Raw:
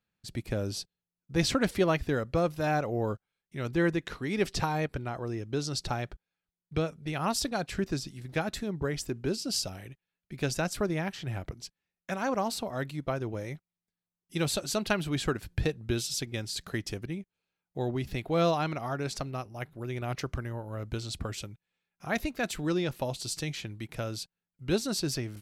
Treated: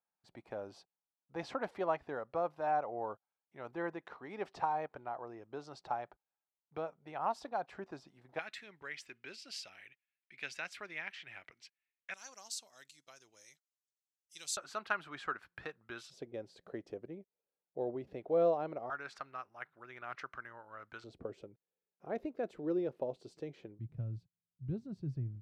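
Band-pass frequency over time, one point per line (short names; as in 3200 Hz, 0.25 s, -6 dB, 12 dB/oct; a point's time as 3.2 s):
band-pass, Q 2.4
840 Hz
from 8.39 s 2200 Hz
from 12.14 s 6600 Hz
from 14.57 s 1300 Hz
from 16.1 s 520 Hz
from 18.9 s 1400 Hz
from 21.04 s 450 Hz
from 23.79 s 120 Hz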